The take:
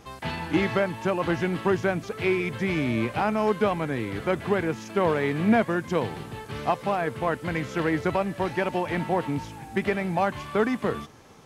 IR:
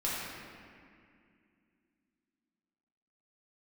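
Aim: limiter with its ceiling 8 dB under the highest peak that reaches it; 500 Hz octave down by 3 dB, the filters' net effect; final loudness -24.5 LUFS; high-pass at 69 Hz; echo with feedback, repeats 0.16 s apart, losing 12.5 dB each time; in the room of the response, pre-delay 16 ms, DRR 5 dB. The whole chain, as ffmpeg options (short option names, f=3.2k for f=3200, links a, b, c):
-filter_complex "[0:a]highpass=69,equalizer=f=500:t=o:g=-4,alimiter=limit=-18.5dB:level=0:latency=1,aecho=1:1:160|320|480:0.237|0.0569|0.0137,asplit=2[a][b];[1:a]atrim=start_sample=2205,adelay=16[c];[b][c]afir=irnorm=-1:irlink=0,volume=-12dB[d];[a][d]amix=inputs=2:normalize=0,volume=4dB"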